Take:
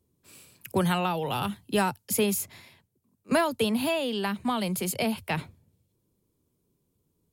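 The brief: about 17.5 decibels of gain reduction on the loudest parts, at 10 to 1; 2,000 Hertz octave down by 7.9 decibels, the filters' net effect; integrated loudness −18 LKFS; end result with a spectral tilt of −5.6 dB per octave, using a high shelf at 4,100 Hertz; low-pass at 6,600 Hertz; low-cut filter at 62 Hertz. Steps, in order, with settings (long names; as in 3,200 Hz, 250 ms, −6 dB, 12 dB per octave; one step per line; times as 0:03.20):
high-pass filter 62 Hz
low-pass filter 6,600 Hz
parametric band 2,000 Hz −9 dB
high-shelf EQ 4,100 Hz −8.5 dB
downward compressor 10 to 1, threshold −39 dBFS
level +25.5 dB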